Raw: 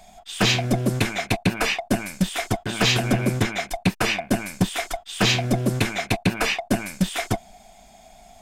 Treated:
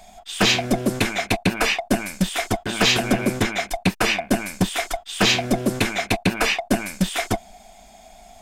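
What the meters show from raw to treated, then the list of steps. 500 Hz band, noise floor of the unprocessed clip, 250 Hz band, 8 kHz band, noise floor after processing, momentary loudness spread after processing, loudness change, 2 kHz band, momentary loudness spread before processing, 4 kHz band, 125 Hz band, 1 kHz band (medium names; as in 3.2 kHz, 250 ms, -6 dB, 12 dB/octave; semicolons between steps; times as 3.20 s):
+2.5 dB, -51 dBFS, +1.5 dB, +2.5 dB, -49 dBFS, 7 LU, +1.5 dB, +2.5 dB, 7 LU, +2.5 dB, -3.0 dB, +2.5 dB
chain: peaking EQ 130 Hz -10.5 dB 0.47 oct; trim +2.5 dB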